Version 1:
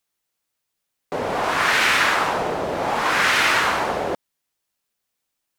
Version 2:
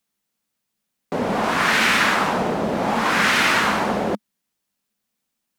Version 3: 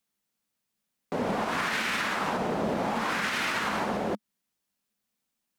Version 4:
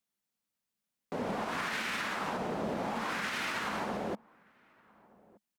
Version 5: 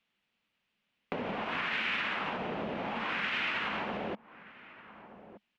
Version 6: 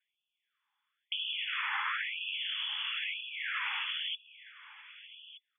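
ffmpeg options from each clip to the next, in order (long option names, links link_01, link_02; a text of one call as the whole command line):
ffmpeg -i in.wav -af "equalizer=frequency=210:width_type=o:width=0.64:gain=13.5" out.wav
ffmpeg -i in.wav -af "alimiter=limit=-15.5dB:level=0:latency=1:release=165,volume=-4dB" out.wav
ffmpeg -i in.wav -filter_complex "[0:a]asplit=2[link_01][link_02];[link_02]adelay=1224,volume=-25dB,highshelf=frequency=4000:gain=-27.6[link_03];[link_01][link_03]amix=inputs=2:normalize=0,volume=-6dB" out.wav
ffmpeg -i in.wav -af "acompressor=threshold=-44dB:ratio=5,lowpass=frequency=2800:width_type=q:width=2.6,volume=9dB" out.wav
ffmpeg -i in.wav -af "lowpass=frequency=3100:width_type=q:width=0.5098,lowpass=frequency=3100:width_type=q:width=0.6013,lowpass=frequency=3100:width_type=q:width=0.9,lowpass=frequency=3100:width_type=q:width=2.563,afreqshift=-3600,afftfilt=real='re*gte(b*sr/1024,770*pow(2500/770,0.5+0.5*sin(2*PI*1*pts/sr)))':imag='im*gte(b*sr/1024,770*pow(2500/770,0.5+0.5*sin(2*PI*1*pts/sr)))':win_size=1024:overlap=0.75" out.wav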